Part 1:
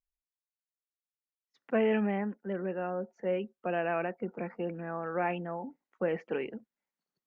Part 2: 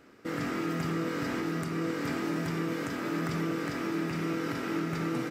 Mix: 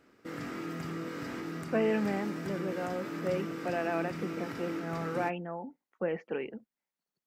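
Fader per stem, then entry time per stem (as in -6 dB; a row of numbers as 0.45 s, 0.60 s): -1.5 dB, -6.5 dB; 0.00 s, 0.00 s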